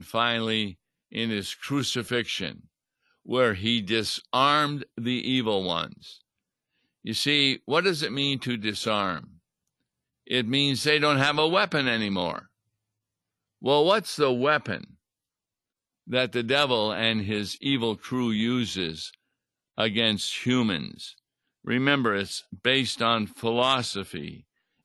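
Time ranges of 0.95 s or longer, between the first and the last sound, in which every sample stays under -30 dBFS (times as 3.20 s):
5.87–7.07 s
9.19–10.30 s
12.39–13.64 s
14.84–16.10 s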